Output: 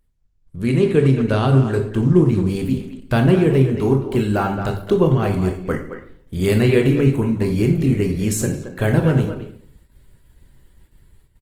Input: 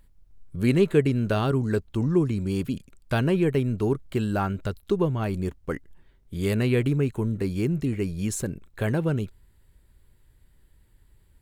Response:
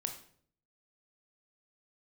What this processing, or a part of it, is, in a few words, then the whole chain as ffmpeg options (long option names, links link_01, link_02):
speakerphone in a meeting room: -filter_complex "[0:a]asplit=3[link_01][link_02][link_03];[link_01]afade=type=out:start_time=1.85:duration=0.02[link_04];[link_02]lowshelf=frequency=170:gain=3,afade=type=in:start_time=1.85:duration=0.02,afade=type=out:start_time=3.34:duration=0.02[link_05];[link_03]afade=type=in:start_time=3.34:duration=0.02[link_06];[link_04][link_05][link_06]amix=inputs=3:normalize=0[link_07];[1:a]atrim=start_sample=2205[link_08];[link_07][link_08]afir=irnorm=-1:irlink=0,asplit=2[link_09][link_10];[link_10]adelay=220,highpass=300,lowpass=3400,asoftclip=type=hard:threshold=-17.5dB,volume=-9dB[link_11];[link_09][link_11]amix=inputs=2:normalize=0,dynaudnorm=framelen=310:gausssize=5:maxgain=8.5dB,agate=range=-8dB:threshold=-49dB:ratio=16:detection=peak" -ar 48000 -c:a libopus -b:a 20k